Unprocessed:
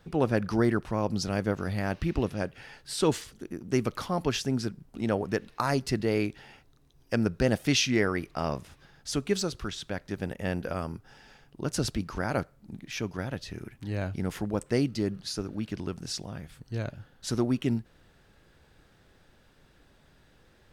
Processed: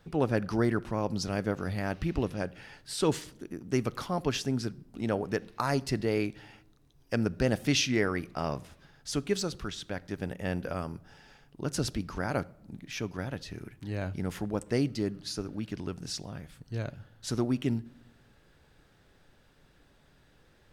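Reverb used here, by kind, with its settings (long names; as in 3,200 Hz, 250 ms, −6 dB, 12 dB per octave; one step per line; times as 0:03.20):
rectangular room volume 2,500 cubic metres, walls furnished, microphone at 0.31 metres
level −2 dB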